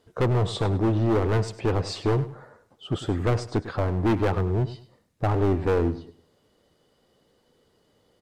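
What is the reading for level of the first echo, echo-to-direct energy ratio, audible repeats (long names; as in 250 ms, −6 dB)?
−14.5 dB, −14.0 dB, 2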